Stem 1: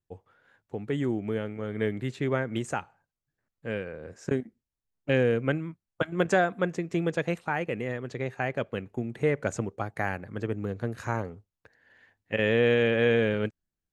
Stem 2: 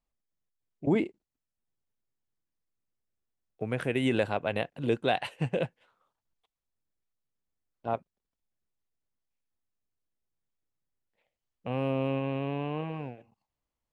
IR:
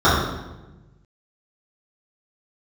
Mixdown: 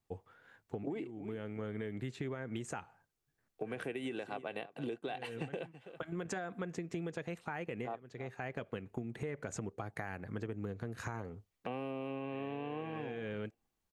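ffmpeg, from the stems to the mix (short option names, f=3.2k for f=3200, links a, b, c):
-filter_complex "[0:a]bandreject=f=570:w=13,alimiter=limit=-20.5dB:level=0:latency=1:release=68,volume=1dB[a];[1:a]highpass=f=150:w=0.5412,highpass=f=150:w=1.3066,aecho=1:1:2.6:0.36,alimiter=limit=-21dB:level=0:latency=1:release=292,volume=1dB,asplit=3[b][c][d];[c]volume=-20.5dB[e];[d]apad=whole_len=618496[f];[a][f]sidechaincompress=threshold=-42dB:ratio=10:attack=9.3:release=564[g];[e]aecho=0:1:327:1[h];[g][b][h]amix=inputs=3:normalize=0,acompressor=threshold=-37dB:ratio=6"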